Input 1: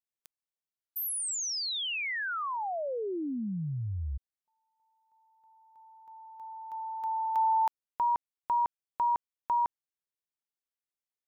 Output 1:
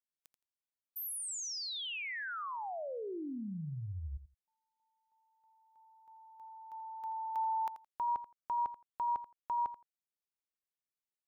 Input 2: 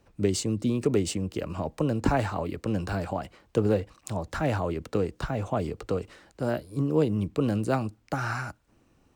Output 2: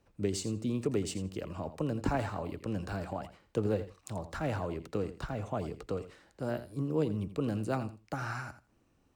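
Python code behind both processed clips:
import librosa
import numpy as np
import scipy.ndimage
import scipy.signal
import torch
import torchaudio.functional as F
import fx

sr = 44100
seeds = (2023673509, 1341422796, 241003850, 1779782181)

y = fx.echo_feedback(x, sr, ms=84, feedback_pct=16, wet_db=-13.0)
y = y * 10.0 ** (-7.0 / 20.0)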